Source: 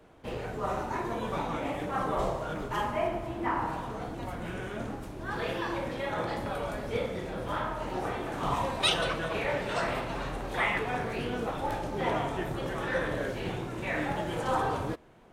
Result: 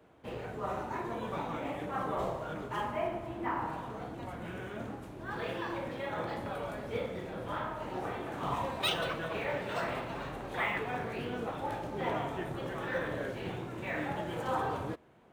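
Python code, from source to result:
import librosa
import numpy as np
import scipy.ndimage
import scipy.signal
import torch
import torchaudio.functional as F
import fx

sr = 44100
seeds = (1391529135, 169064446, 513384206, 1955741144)

y = scipy.signal.sosfilt(scipy.signal.butter(2, 67.0, 'highpass', fs=sr, output='sos'), x)
y = fx.peak_eq(y, sr, hz=5300.0, db=-3.5, octaves=0.77)
y = np.interp(np.arange(len(y)), np.arange(len(y))[::2], y[::2])
y = y * librosa.db_to_amplitude(-4.0)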